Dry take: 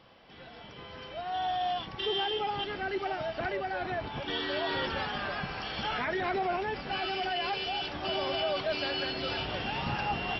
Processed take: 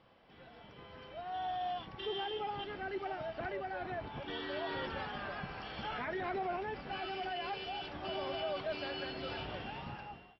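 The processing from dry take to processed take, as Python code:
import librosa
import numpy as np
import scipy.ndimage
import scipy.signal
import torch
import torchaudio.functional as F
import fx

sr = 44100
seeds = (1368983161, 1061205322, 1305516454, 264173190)

y = fx.fade_out_tail(x, sr, length_s=0.93)
y = fx.lowpass(y, sr, hz=2400.0, slope=6)
y = y * librosa.db_to_amplitude(-6.0)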